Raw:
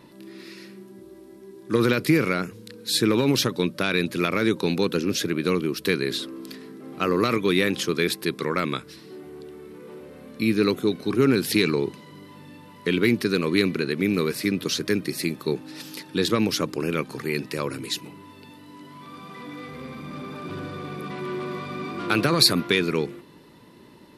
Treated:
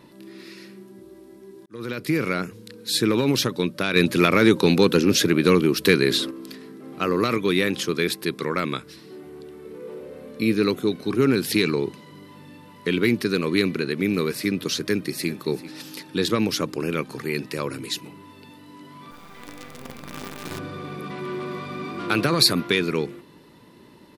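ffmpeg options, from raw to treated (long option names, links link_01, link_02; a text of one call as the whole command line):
ffmpeg -i in.wav -filter_complex "[0:a]asettb=1/sr,asplit=3[link_01][link_02][link_03];[link_01]atrim=end=3.964[link_04];[link_02]atrim=start=3.96:end=6.31,asetpts=PTS-STARTPTS,afade=type=in:duration=0.004:curve=qsin,afade=type=out:start_time=2.346:duration=0.004:curve=qsin,acontrast=66[link_05];[link_03]atrim=start=6.306[link_06];[link_04][link_05]acrossfade=duration=0.004:curve1=hsin:curve2=qsin[link_07];[link_07][link_06]acrossfade=duration=0.004:curve1=qsin:curve2=hsin,asettb=1/sr,asplit=3[link_08][link_09][link_10];[link_08]atrim=end=9.654[link_11];[link_09]atrim=start=9.65:end=10.55,asetpts=PTS-STARTPTS,afade=type=in:duration=0.004:curve=qsin,afade=type=out:start_time=0.896:duration=0.004:curve=qsin,equalizer=frequency=480:width=2.9:gain=9[link_12];[link_10]atrim=start=10.546[link_13];[link_11][link_12]acrossfade=duration=0.004:curve1=hsin:curve2=qsin[link_14];[link_14][link_13]acrossfade=duration=0.004:curve1=qsin:curve2=hsin,asplit=2[link_15][link_16];[link_16]afade=type=in:start_time=14.84:duration=0.01,afade=type=out:start_time=15.3:duration=0.01,aecho=0:1:390|780:0.149624|0.0224435[link_17];[link_15][link_17]amix=inputs=2:normalize=0,asettb=1/sr,asplit=3[link_18][link_19][link_20];[link_18]atrim=end=19.114[link_21];[link_19]atrim=start=19.11:end=20.59,asetpts=PTS-STARTPTS,afade=type=in:duration=0.004:curve=qsin,afade=type=out:start_time=1.476:duration=0.004:curve=qsin,acrusher=bits=6:dc=4:mix=0:aa=0.000001[link_22];[link_20]atrim=start=20.586[link_23];[link_21][link_22]acrossfade=duration=0.004:curve1=hsin:curve2=qsin[link_24];[link_24][link_23]acrossfade=duration=0.004:curve1=qsin:curve2=hsin,asplit=2[link_25][link_26];[link_25]atrim=end=1.66,asetpts=PTS-STARTPTS,afade=type=out:start_time=1.656:duration=0.004:curve=hsin[link_27];[link_26]atrim=start=1.66,asetpts=PTS-STARTPTS,afade=type=in:duration=0.71[link_28];[link_27][link_28]concat=n=2:v=0:a=1" out.wav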